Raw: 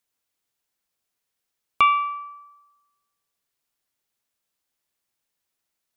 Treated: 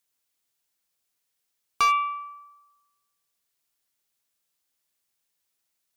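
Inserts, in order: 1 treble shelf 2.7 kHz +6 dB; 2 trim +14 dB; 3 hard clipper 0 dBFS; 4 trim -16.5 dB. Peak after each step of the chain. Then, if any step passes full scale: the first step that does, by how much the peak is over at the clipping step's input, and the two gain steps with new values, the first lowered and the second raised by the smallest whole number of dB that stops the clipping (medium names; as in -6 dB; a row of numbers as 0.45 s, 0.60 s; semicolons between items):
-5.5 dBFS, +8.5 dBFS, 0.0 dBFS, -16.5 dBFS; step 2, 8.5 dB; step 2 +5 dB, step 4 -7.5 dB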